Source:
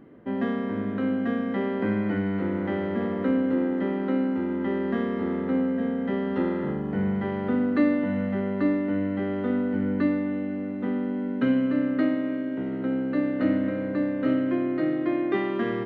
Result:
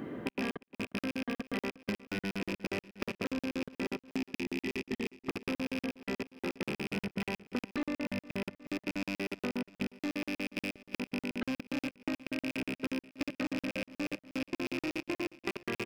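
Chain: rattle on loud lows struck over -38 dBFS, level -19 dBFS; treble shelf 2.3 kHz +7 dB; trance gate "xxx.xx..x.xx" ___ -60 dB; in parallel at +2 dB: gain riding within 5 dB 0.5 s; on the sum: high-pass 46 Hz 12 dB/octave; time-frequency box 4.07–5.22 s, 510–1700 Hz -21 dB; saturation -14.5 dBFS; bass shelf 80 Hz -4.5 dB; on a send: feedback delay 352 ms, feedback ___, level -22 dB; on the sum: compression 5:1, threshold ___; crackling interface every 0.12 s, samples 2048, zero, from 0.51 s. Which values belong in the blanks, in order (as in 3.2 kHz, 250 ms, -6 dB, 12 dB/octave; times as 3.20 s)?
159 bpm, 51%, -34 dBFS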